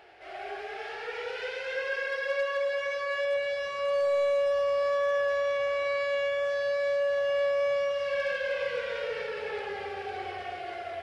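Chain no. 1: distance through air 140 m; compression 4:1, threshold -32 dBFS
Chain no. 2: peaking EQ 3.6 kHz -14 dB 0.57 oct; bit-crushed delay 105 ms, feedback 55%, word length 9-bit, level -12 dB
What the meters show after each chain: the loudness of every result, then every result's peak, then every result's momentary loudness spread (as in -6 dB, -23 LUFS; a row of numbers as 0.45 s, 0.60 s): -34.5 LUFS, -30.5 LUFS; -25.5 dBFS, -20.5 dBFS; 6 LU, 10 LU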